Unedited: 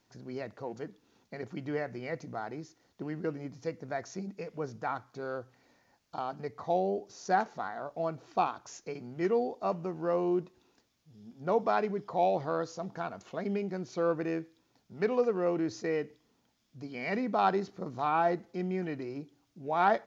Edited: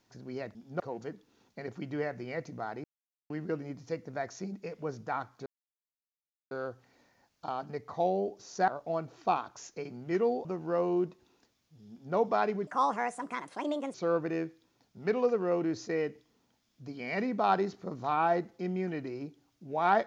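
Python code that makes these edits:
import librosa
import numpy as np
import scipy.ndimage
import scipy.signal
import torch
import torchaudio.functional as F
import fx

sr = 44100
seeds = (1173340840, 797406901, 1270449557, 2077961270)

y = fx.edit(x, sr, fx.silence(start_s=2.59, length_s=0.46),
    fx.insert_silence(at_s=5.21, length_s=1.05),
    fx.cut(start_s=7.38, length_s=0.4),
    fx.cut(start_s=9.55, length_s=0.25),
    fx.duplicate(start_s=11.25, length_s=0.25, to_s=0.55),
    fx.speed_span(start_s=12.02, length_s=1.87, speed=1.47), tone=tone)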